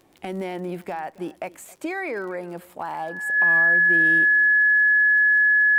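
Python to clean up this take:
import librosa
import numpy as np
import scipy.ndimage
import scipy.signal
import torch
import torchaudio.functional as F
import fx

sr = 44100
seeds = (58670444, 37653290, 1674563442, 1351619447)

y = fx.fix_declick_ar(x, sr, threshold=6.5)
y = fx.notch(y, sr, hz=1700.0, q=30.0)
y = fx.fix_echo_inverse(y, sr, delay_ms=272, level_db=-21.5)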